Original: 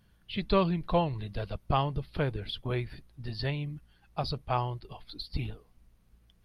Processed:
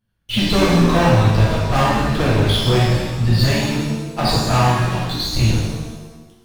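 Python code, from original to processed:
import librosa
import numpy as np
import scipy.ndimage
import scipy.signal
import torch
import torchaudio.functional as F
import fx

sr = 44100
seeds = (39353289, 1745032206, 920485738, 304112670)

y = fx.leveller(x, sr, passes=5)
y = fx.rev_shimmer(y, sr, seeds[0], rt60_s=1.2, semitones=7, shimmer_db=-8, drr_db=-7.0)
y = y * 10.0 ** (-4.5 / 20.0)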